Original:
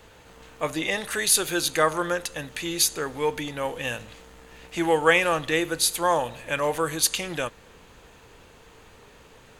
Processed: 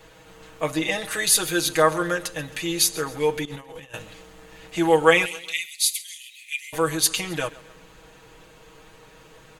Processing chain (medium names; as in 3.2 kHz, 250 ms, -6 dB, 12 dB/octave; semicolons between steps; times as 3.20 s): 5.25–6.73 s: Chebyshev high-pass 2 kHz, order 8; comb 6.3 ms, depth 89%; 3.45–3.94 s: compressor with a negative ratio -37 dBFS, ratio -0.5; feedback delay 134 ms, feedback 45%, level -19.5 dB; trim -1 dB